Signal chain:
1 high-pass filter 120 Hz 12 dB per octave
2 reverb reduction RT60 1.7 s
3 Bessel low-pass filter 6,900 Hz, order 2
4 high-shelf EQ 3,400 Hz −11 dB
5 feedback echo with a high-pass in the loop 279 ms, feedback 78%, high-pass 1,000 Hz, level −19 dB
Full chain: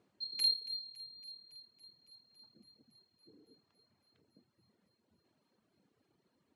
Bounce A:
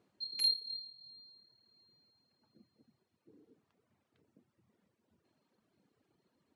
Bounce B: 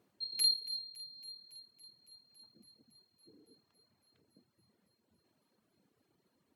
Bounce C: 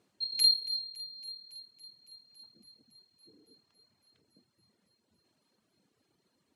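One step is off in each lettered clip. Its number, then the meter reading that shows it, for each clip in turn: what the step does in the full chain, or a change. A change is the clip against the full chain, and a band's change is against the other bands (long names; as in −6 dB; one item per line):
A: 5, change in momentary loudness spread −3 LU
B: 3, 8 kHz band +9.0 dB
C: 4, 8 kHz band +10.0 dB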